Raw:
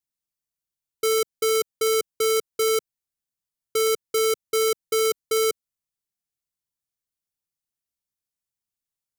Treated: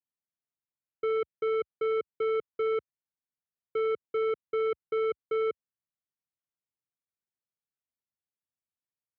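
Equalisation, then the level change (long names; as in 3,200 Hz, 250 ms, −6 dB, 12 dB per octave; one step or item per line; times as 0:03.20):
high-pass filter 73 Hz 24 dB per octave
low-pass filter 2,600 Hz 24 dB per octave
high-frequency loss of the air 300 metres
−5.0 dB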